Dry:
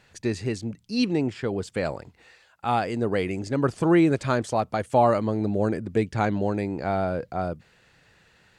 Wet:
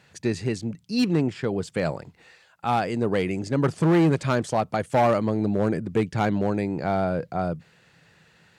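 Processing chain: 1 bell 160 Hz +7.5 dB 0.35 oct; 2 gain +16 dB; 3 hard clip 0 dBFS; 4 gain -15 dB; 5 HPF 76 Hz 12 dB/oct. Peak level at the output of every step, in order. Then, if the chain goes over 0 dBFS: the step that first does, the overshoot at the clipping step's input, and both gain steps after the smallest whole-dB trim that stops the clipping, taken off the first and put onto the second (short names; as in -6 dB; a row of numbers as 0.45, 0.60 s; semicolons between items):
-8.0, +8.0, 0.0, -15.0, -10.5 dBFS; step 2, 8.0 dB; step 2 +8 dB, step 4 -7 dB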